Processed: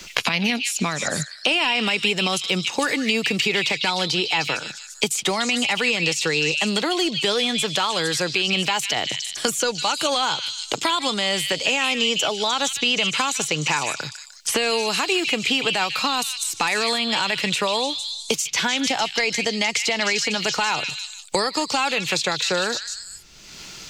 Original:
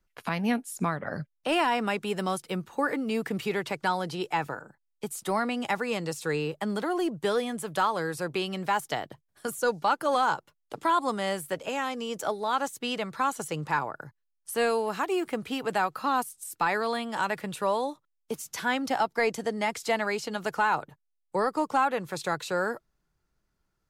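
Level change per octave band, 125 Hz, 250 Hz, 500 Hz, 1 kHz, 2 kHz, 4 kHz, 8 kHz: +5.5, +4.5, +3.5, +1.5, +9.5, +18.5, +15.5 dB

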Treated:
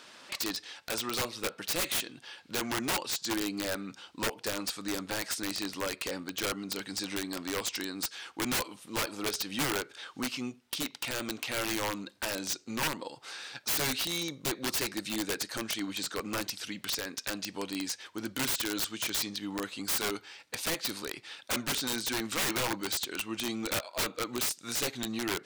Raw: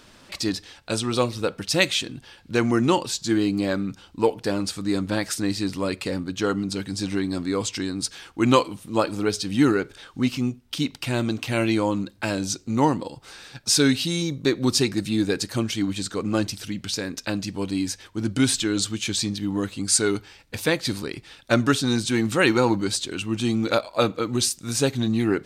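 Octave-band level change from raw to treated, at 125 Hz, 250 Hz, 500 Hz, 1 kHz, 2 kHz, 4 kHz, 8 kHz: -17.5, -14.0, -13.0, -9.0, -6.0, -5.5, -6.0 dB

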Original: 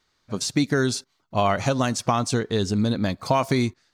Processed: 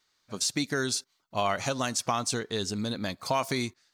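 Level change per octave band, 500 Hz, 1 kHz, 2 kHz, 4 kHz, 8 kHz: -7.5, -5.5, -4.0, -1.5, 0.0 dB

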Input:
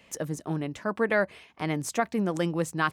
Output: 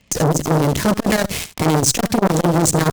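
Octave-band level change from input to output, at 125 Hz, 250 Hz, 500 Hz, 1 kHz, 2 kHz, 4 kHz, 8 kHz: +15.5, +12.5, +10.0, +10.5, +5.0, +16.5, +19.5 dB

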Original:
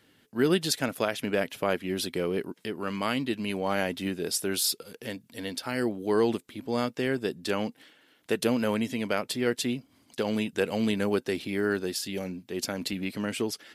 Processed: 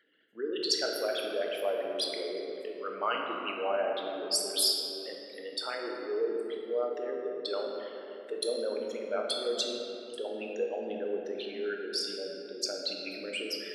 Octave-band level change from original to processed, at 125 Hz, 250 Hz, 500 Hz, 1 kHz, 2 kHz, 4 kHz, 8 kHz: under -25 dB, -13.0 dB, -2.5 dB, -3.0 dB, -7.0 dB, +1.5 dB, -3.0 dB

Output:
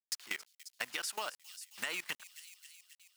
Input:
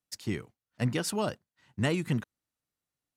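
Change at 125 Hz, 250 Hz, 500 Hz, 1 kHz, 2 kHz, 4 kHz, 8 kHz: -36.5, -26.0, -15.5, -5.5, -0.5, -0.5, -1.0 dB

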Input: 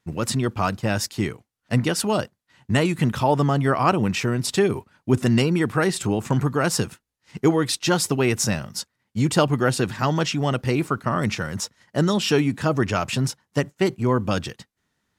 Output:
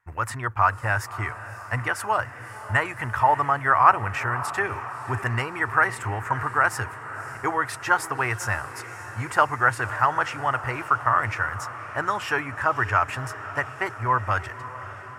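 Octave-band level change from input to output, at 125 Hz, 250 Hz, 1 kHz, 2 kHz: -7.5, -16.0, +5.5, +5.5 dB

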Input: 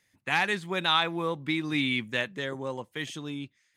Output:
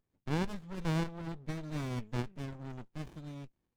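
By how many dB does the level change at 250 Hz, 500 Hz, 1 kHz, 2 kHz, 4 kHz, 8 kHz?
-5.5, -9.5, -13.5, -18.5, -20.0, -8.0 dB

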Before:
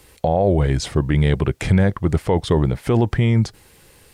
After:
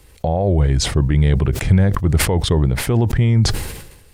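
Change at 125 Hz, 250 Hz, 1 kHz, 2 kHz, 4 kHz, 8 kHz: +3.0, 0.0, -1.5, +2.5, +7.0, +10.5 dB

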